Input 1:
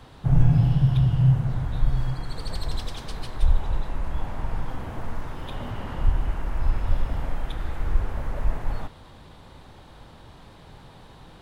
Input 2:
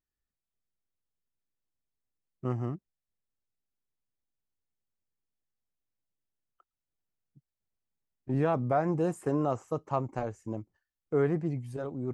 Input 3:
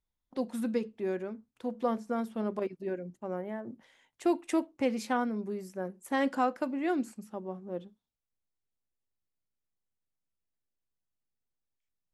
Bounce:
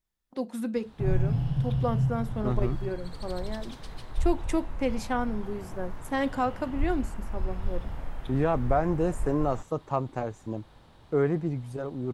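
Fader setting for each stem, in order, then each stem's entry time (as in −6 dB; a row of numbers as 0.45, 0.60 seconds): −8.0, +2.0, +1.0 decibels; 0.75, 0.00, 0.00 seconds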